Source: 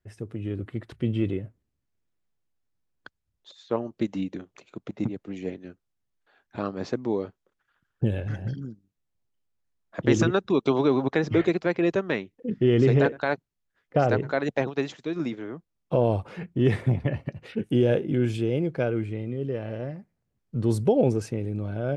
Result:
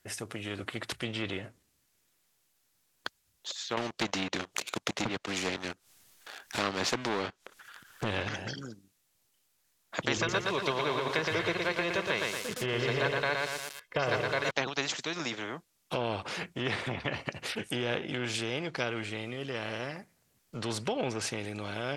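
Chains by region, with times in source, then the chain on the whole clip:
3.77–8.29 upward compressor, threshold -48 dBFS + sample leveller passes 2
10.17–14.51 high shelf 4300 Hz -7.5 dB + comb 1.9 ms, depth 72% + lo-fi delay 0.117 s, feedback 35%, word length 8-bit, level -5 dB
whole clip: treble ducked by the level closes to 2700 Hz, closed at -18 dBFS; tilt +3 dB/oct; spectral compressor 2:1; gain -2.5 dB

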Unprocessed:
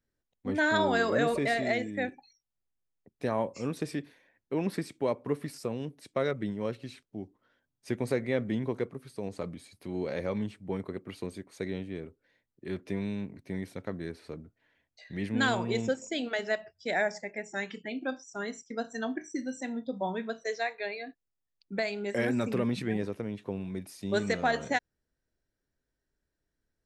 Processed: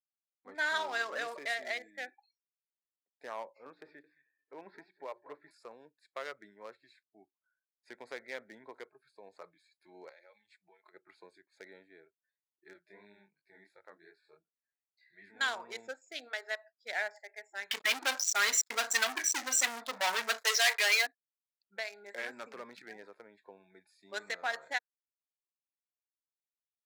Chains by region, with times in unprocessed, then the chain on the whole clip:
3.43–5.51 air absorption 270 m + notches 60/120/180/240/300/360 Hz + feedback echo 0.22 s, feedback 27%, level -15 dB
10.09–10.94 HPF 45 Hz + band shelf 4700 Hz +8 dB 2.5 oct + compressor 16:1, threshold -40 dBFS
12.73–15.41 notches 60/120/180/240/300 Hz + chorus 2.8 Hz, delay 19 ms, depth 6.9 ms
17.71–21.07 sample leveller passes 5 + tilt +1.5 dB/oct
whole clip: Wiener smoothing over 15 samples; spectral noise reduction 21 dB; Bessel high-pass 1400 Hz, order 2

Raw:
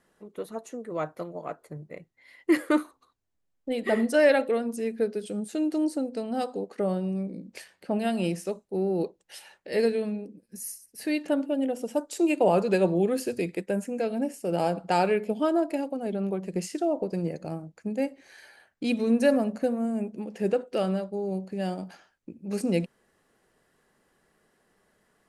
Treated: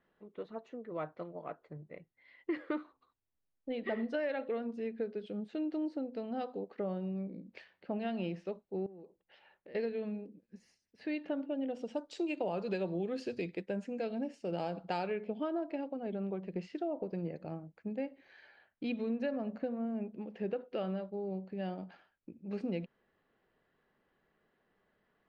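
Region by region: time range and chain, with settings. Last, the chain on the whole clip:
8.86–9.75 tape spacing loss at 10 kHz 24 dB + compressor 16:1, threshold -40 dBFS
11.67–15.07 tone controls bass +1 dB, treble +15 dB + mismatched tape noise reduction decoder only
whole clip: LPF 3700 Hz 24 dB/oct; compressor, threshold -24 dBFS; gain -7.5 dB

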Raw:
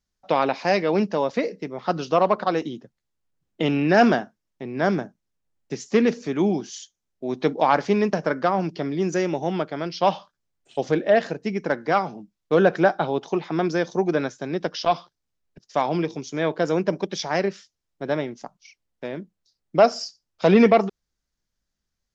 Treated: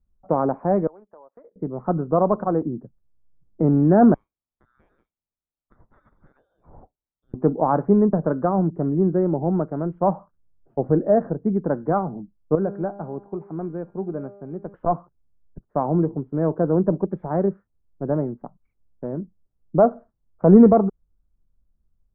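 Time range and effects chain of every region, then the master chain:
0.87–1.56 HPF 760 Hz + compressor 16:1, threshold -41 dBFS + gate -47 dBFS, range -21 dB
4.14–7.34 air absorption 160 m + inverted band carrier 3900 Hz + compressor 8:1, threshold -32 dBFS
12.55–14.74 bell 2400 Hz +11 dB 0.28 oct + resonator 200 Hz, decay 1.2 s, mix 70%
whole clip: steep low-pass 1400 Hz 36 dB/oct; tilt -4 dB/oct; gain -3 dB

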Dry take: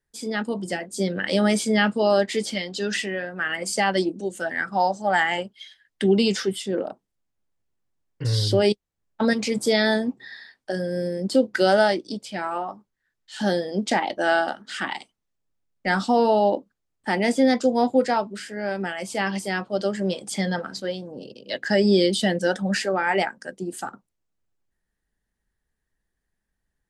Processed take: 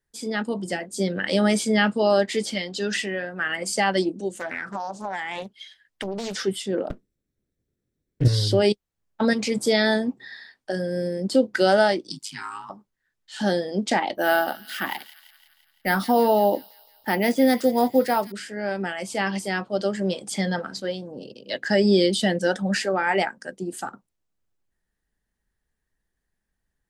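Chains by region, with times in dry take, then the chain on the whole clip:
4.33–6.4 compressor 16:1, threshold -25 dBFS + Doppler distortion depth 0.67 ms
6.9–8.28 minimum comb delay 0.53 ms + resonant low shelf 620 Hz +9 dB, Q 1.5
12.1–12.7 Chebyshev band-stop 310–920 Hz, order 4 + tone controls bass -8 dB, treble +11 dB + ring modulator 53 Hz
14.15–18.32 careless resampling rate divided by 3×, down filtered, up hold + thin delay 0.17 s, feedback 59%, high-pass 3000 Hz, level -11.5 dB
whole clip: dry

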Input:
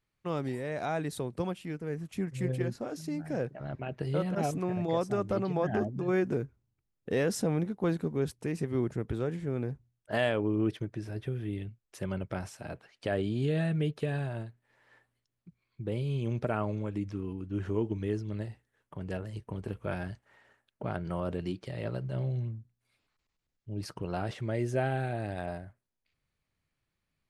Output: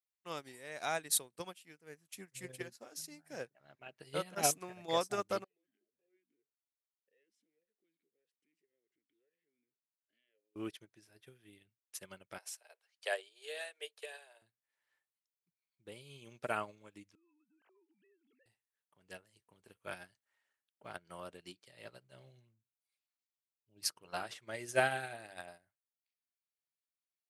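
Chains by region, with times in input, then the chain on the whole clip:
5.44–10.56 compressor 5:1, threshold -41 dBFS + vowel sweep e-i 1.8 Hz
12.38–14.42 steep high-pass 420 Hz 48 dB/oct + dynamic EQ 1300 Hz, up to -5 dB, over -58 dBFS, Q 3.7
17.15–18.46 sine-wave speech + compressor, threshold -42 dBFS
23.9–25.42 bell 1200 Hz +3 dB 1.4 oct + notches 50/100/150/200/250/300/350/400/450/500 Hz
whole clip: tilt +4.5 dB/oct; upward expander 2.5:1, over -47 dBFS; gain +4 dB

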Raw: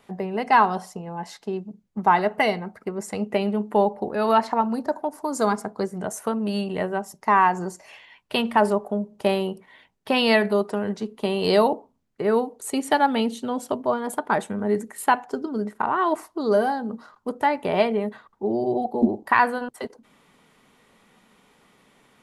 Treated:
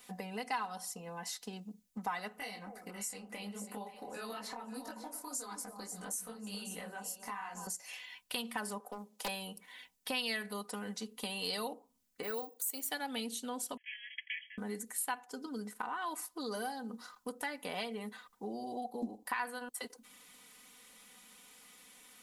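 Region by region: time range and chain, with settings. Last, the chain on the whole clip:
2.38–7.67 compressor 2.5:1, threshold -30 dBFS + echo with dull and thin repeats by turns 0.271 s, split 970 Hz, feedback 52%, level -8 dB + detuned doubles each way 55 cents
8.8–9.28 steep high-pass 160 Hz 72 dB/oct + tone controls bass -14 dB, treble 0 dB + Doppler distortion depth 0.57 ms
12.23–12.91 HPF 300 Hz + careless resampling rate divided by 2×, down none, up hold
13.77–14.58 minimum comb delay 0.93 ms + brick-wall FIR band-pass 1600–3400 Hz
whole clip: pre-emphasis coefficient 0.9; comb 4 ms, depth 72%; compressor 2.5:1, threshold -49 dBFS; gain +8 dB

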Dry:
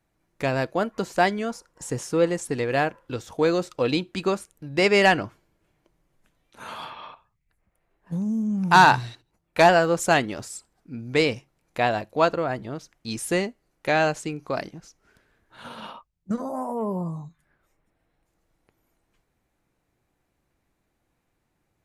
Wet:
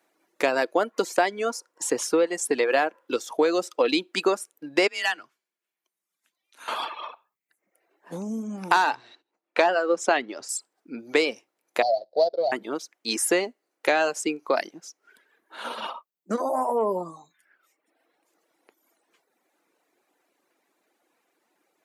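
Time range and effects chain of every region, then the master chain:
4.87–6.68 passive tone stack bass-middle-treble 5-5-5 + frequency shift +30 Hz
8.95–10.49 air absorption 110 m + notch 160 Hz, Q 5
11.82–12.52 median filter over 41 samples + EQ curve 100 Hz 0 dB, 160 Hz -5 dB, 270 Hz -19 dB, 660 Hz +8 dB, 1100 Hz -20 dB, 2700 Hz -24 dB, 4500 Hz +10 dB, 7500 Hz -27 dB, 13000 Hz -17 dB
whole clip: reverb removal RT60 1 s; HPF 300 Hz 24 dB/oct; compressor 6:1, threshold -26 dBFS; gain +8 dB

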